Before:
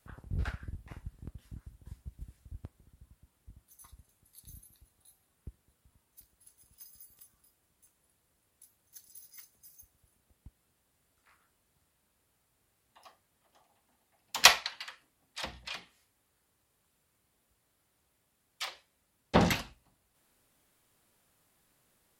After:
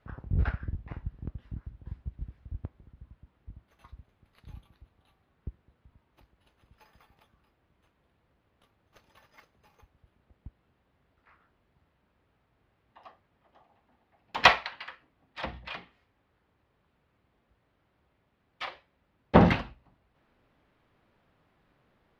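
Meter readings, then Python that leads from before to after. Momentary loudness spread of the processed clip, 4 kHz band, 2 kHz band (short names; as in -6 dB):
24 LU, -3.5 dB, +2.5 dB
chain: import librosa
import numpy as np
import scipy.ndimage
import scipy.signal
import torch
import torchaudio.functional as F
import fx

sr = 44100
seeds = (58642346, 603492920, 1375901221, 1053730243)

p1 = fx.sample_hold(x, sr, seeds[0], rate_hz=6800.0, jitter_pct=0)
p2 = x + (p1 * librosa.db_to_amplitude(-10.5))
p3 = fx.air_absorb(p2, sr, metres=330.0)
y = p3 * librosa.db_to_amplitude(5.0)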